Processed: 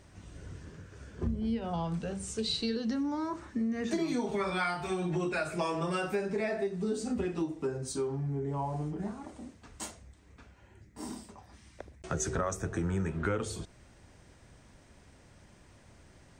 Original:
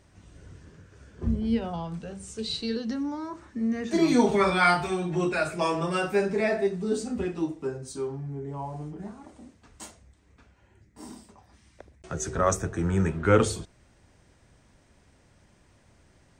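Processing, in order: compressor 10:1, threshold -31 dBFS, peak gain reduction 17 dB; gain +2.5 dB

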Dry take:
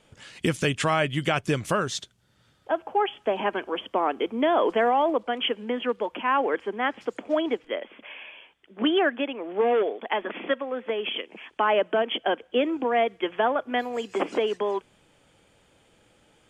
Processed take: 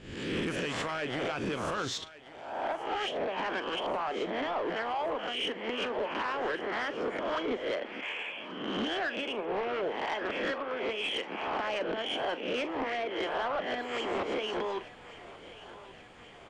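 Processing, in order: spectral swells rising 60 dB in 0.75 s; high shelf 9200 Hz -8 dB; harmonic-percussive split harmonic -15 dB; in parallel at -2 dB: compressor, threshold -35 dBFS, peak gain reduction 15 dB; on the sum: limiter -19 dBFS, peak gain reduction 9 dB; vocal rider within 4 dB 0.5 s; soft clip -27 dBFS, distortion -13 dB; air absorption 52 m; doubler 41 ms -13 dB; on a send: thinning echo 1.132 s, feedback 64%, high-pass 420 Hz, level -16 dB

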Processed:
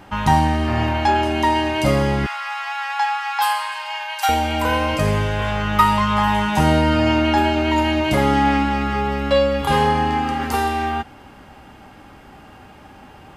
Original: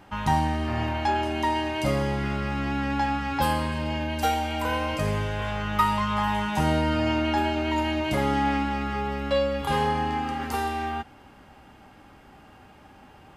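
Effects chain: 2.26–4.29 steep high-pass 760 Hz 48 dB/oct; gain +7.5 dB

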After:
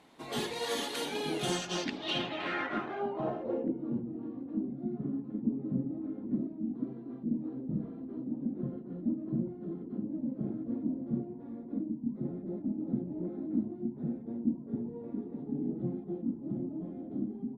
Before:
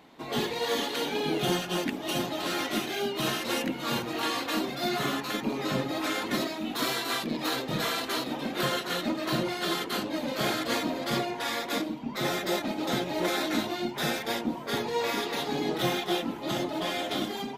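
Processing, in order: low-pass sweep 10000 Hz -> 240 Hz, 1.38–4.05; gain -5.5 dB

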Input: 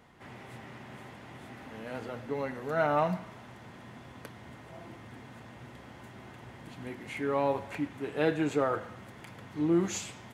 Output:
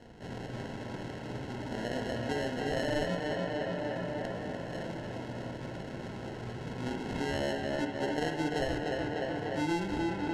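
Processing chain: sample-and-hold 37×; LPF 6200 Hz 12 dB/oct; tape echo 0.298 s, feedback 71%, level -5 dB, low-pass 4100 Hz; compressor 4:1, threshold -37 dBFS, peak gain reduction 13.5 dB; reverb, pre-delay 51 ms, DRR 5.5 dB; gain +5.5 dB

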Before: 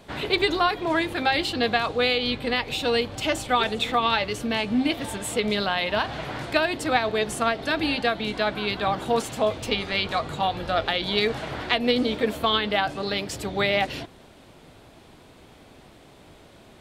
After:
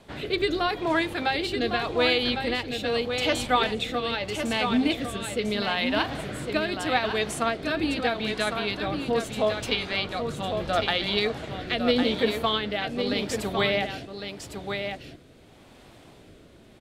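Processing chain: rotary speaker horn 0.8 Hz; on a send: echo 1.105 s -6.5 dB

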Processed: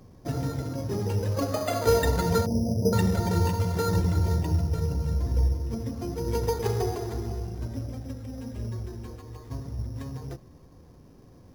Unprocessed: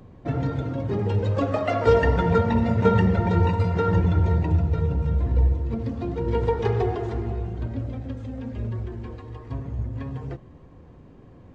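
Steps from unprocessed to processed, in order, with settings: 2.46–2.93 Chebyshev low-pass 660 Hz, order 4; careless resampling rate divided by 8×, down none, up hold; gain -4 dB

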